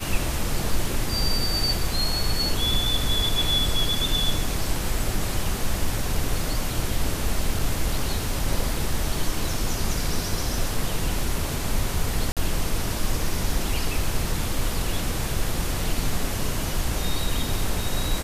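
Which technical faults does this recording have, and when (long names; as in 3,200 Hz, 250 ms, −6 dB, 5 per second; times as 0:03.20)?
0:07.59: drop-out 3.5 ms
0:12.32–0:12.37: drop-out 47 ms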